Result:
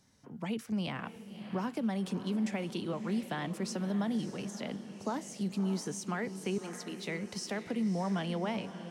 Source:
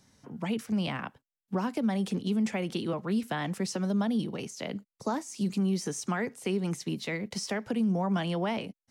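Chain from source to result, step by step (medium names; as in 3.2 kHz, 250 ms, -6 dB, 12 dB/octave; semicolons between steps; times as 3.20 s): 6.58–7.05 s: high-pass 350 Hz; echo that smears into a reverb 601 ms, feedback 44%, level -11 dB; trim -4.5 dB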